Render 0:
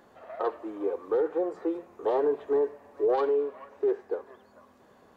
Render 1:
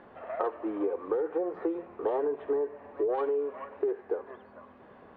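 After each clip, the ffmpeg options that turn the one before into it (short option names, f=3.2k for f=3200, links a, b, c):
-af "lowpass=f=2.9k:w=0.5412,lowpass=f=2.9k:w=1.3066,acompressor=threshold=-31dB:ratio=10,volume=5dB"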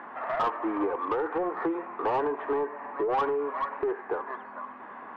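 -filter_complex "[0:a]equalizer=f=125:t=o:w=1:g=-6,equalizer=f=250:t=o:w=1:g=7,equalizer=f=500:t=o:w=1:g=-7,equalizer=f=1k:t=o:w=1:g=10,equalizer=f=2k:t=o:w=1:g=8,asplit=2[a][b];[b]highpass=f=720:p=1,volume=22dB,asoftclip=type=tanh:threshold=-8.5dB[c];[a][c]amix=inputs=2:normalize=0,lowpass=f=1.1k:p=1,volume=-6dB,volume=-6.5dB"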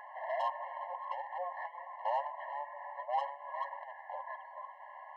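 -af "afftfilt=real='re*eq(mod(floor(b*sr/1024/550),2),1)':imag='im*eq(mod(floor(b*sr/1024/550),2),1)':win_size=1024:overlap=0.75,volume=-4.5dB"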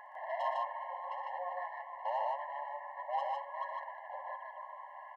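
-af "aecho=1:1:61.22|119.5|151.6:0.251|0.355|0.794,volume=-2.5dB"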